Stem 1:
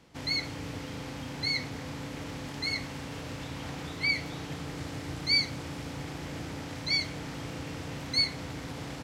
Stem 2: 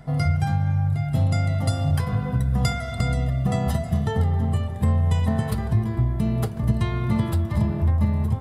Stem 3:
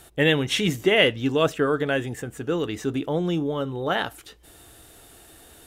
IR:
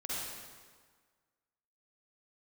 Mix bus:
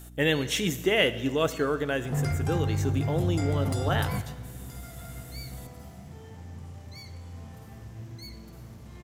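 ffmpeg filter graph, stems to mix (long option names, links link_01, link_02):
-filter_complex "[0:a]asoftclip=type=tanh:threshold=-22dB,adelay=50,volume=-19dB,asplit=2[link_01][link_02];[link_02]volume=-14.5dB[link_03];[1:a]highpass=44,alimiter=limit=-20dB:level=0:latency=1:release=321,asoftclip=type=tanh:threshold=-26dB,adelay=2050,volume=2.5dB,asplit=2[link_04][link_05];[link_05]volume=-19dB[link_06];[2:a]aeval=exprs='val(0)+0.00891*(sin(2*PI*60*n/s)+sin(2*PI*2*60*n/s)/2+sin(2*PI*3*60*n/s)/3+sin(2*PI*4*60*n/s)/4+sin(2*PI*5*60*n/s)/5)':channel_layout=same,volume=-5.5dB,asplit=3[link_07][link_08][link_09];[link_08]volume=-16dB[link_10];[link_09]apad=whole_len=461182[link_11];[link_04][link_11]sidechaingate=range=-33dB:threshold=-43dB:ratio=16:detection=peak[link_12];[3:a]atrim=start_sample=2205[link_13];[link_03][link_06][link_10]amix=inputs=3:normalize=0[link_14];[link_14][link_13]afir=irnorm=-1:irlink=0[link_15];[link_01][link_12][link_07][link_15]amix=inputs=4:normalize=0,aexciter=amount=1.4:drive=7.7:freq=5800"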